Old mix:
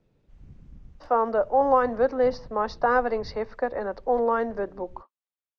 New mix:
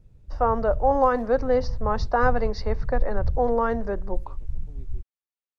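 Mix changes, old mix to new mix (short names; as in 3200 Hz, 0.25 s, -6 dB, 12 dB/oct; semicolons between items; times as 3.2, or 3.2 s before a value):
speech: entry -0.70 s; master: remove three-band isolator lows -20 dB, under 190 Hz, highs -24 dB, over 6100 Hz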